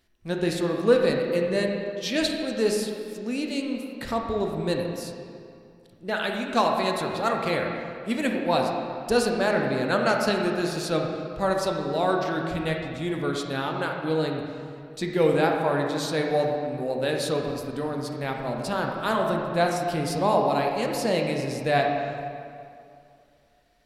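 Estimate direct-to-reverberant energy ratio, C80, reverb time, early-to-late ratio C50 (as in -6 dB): 1.0 dB, 3.5 dB, 2.5 s, 2.0 dB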